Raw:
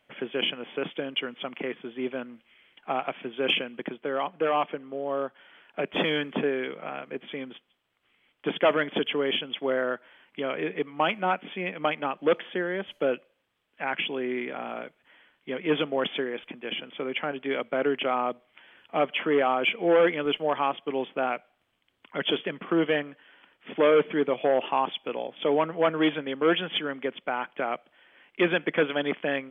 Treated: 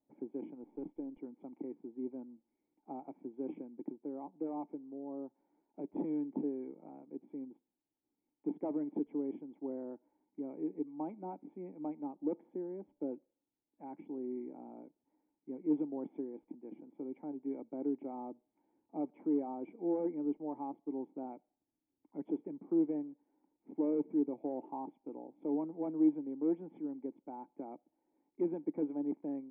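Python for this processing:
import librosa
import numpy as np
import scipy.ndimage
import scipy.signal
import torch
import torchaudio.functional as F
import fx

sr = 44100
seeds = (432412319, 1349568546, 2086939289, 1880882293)

y = fx.halfwave_gain(x, sr, db=-3.0, at=(0.63, 1.18))
y = fx.formant_cascade(y, sr, vowel='u')
y = y * librosa.db_to_amplitude(-2.0)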